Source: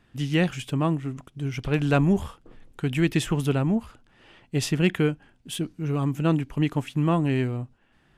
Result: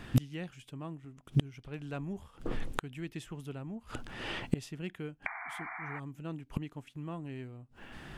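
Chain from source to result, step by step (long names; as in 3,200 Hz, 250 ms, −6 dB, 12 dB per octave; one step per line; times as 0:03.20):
sound drawn into the spectrogram noise, 0:05.26–0:06.00, 660–2,400 Hz −24 dBFS
gate with flip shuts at −28 dBFS, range −33 dB
level +14.5 dB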